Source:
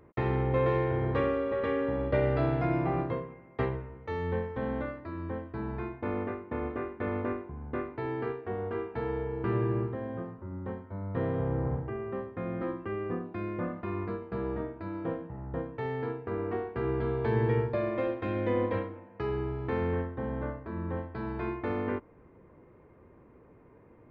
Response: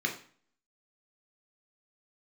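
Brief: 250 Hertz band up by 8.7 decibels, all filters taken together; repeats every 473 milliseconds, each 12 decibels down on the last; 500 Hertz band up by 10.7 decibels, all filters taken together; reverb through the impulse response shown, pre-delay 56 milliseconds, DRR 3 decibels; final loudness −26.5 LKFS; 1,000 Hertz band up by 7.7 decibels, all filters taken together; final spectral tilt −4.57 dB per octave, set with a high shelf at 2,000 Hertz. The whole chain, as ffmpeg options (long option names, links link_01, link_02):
-filter_complex "[0:a]equalizer=frequency=250:width_type=o:gain=7.5,equalizer=frequency=500:width_type=o:gain=9,equalizer=frequency=1000:width_type=o:gain=4.5,highshelf=frequency=2000:gain=7.5,aecho=1:1:473|946|1419:0.251|0.0628|0.0157,asplit=2[link_01][link_02];[1:a]atrim=start_sample=2205,adelay=56[link_03];[link_02][link_03]afir=irnorm=-1:irlink=0,volume=-10.5dB[link_04];[link_01][link_04]amix=inputs=2:normalize=0,volume=-4.5dB"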